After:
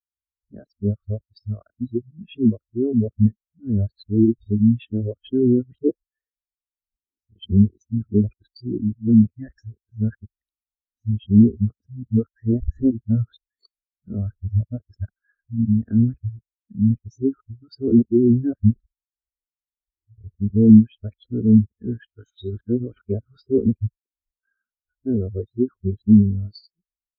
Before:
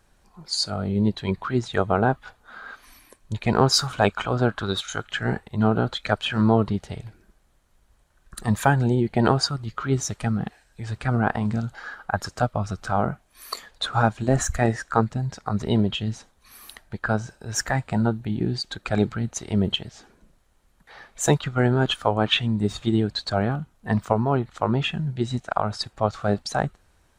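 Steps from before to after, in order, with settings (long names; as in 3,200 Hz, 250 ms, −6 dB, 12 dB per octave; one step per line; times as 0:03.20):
played backwards from end to start
treble cut that deepens with the level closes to 1,200 Hz, closed at −16 dBFS
parametric band 110 Hz +12 dB 2.4 octaves
phaser with its sweep stopped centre 350 Hz, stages 4
in parallel at +3 dB: brickwall limiter −15.5 dBFS, peak gain reduction 8.5 dB
on the sum: every bin expanded away from the loudest bin 2.5 to 1
level +2 dB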